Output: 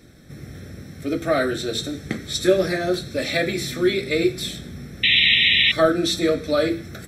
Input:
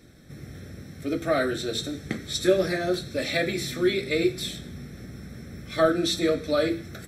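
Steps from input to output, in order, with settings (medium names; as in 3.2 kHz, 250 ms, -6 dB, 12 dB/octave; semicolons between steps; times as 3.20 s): painted sound noise, 5.03–5.72 s, 1.8–4 kHz -20 dBFS; trim +3.5 dB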